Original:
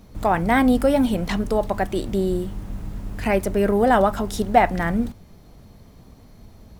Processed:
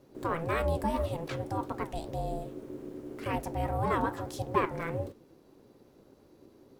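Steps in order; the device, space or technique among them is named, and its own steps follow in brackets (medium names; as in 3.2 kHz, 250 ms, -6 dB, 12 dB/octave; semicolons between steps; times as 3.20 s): alien voice (ring modulator 330 Hz; flange 1.8 Hz, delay 6.5 ms, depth 8.8 ms, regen -78%); trim -5 dB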